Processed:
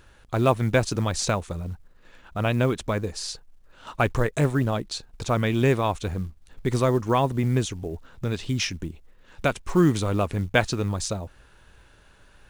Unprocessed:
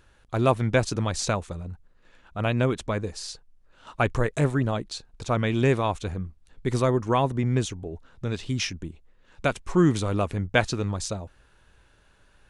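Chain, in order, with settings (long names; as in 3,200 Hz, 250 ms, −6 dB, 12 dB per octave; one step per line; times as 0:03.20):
in parallel at −2 dB: downward compressor 16 to 1, threshold −35 dBFS, peak gain reduction 21 dB
on the sum: floating-point word with a short mantissa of 4 bits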